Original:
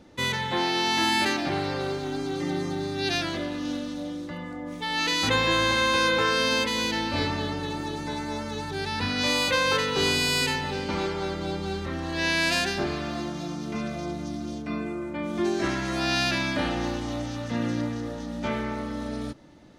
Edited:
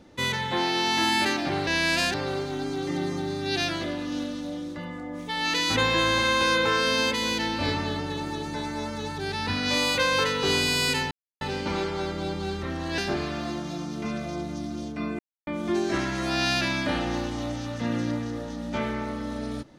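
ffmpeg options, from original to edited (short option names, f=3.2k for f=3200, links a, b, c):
-filter_complex "[0:a]asplit=7[a][b][c][d][e][f][g];[a]atrim=end=1.672[h];[b]atrim=start=12.208:end=12.682[i];[c]atrim=start=1.668:end=10.64,asetpts=PTS-STARTPTS,afade=t=out:st=8.968:d=0.004:c=hsin,apad=pad_dur=0.3[j];[d]atrim=start=10.64:end=12.212,asetpts=PTS-STARTPTS,afade=t=in:d=0.004:c=hsin[k];[e]atrim=start=12.678:end=14.89,asetpts=PTS-STARTPTS,afade=t=out:st=2.208:d=0.004:c=hsin[l];[f]atrim=start=14.89:end=15.17,asetpts=PTS-STARTPTS,volume=0[m];[g]atrim=start=15.17,asetpts=PTS-STARTPTS,afade=t=in:d=0.004:c=hsin[n];[h][i]acrossfade=d=0.004:c1=hsin:c2=hsin[o];[j][k]concat=n=2:v=0:a=1[p];[o][p]acrossfade=d=0.004:c1=hsin:c2=hsin[q];[l][m][n]concat=n=3:v=0:a=1[r];[q][r]acrossfade=d=0.004:c1=hsin:c2=hsin"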